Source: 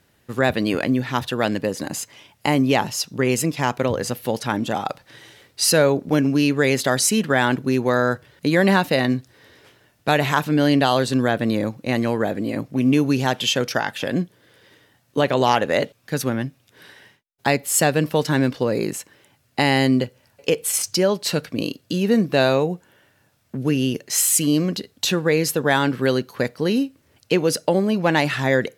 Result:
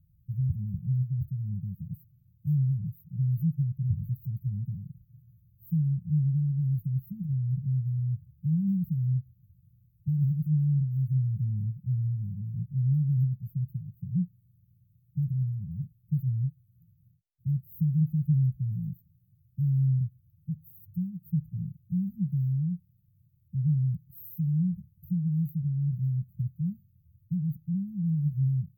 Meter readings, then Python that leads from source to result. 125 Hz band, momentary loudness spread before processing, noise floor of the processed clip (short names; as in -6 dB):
+1.5 dB, 9 LU, -66 dBFS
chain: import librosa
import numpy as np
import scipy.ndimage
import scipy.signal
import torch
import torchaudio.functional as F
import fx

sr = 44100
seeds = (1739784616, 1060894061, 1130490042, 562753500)

y = fx.brickwall_bandstop(x, sr, low_hz=190.0, high_hz=14000.0)
y = fx.low_shelf(y, sr, hz=160.0, db=12.0)
y = y * librosa.db_to_amplitude(-5.0)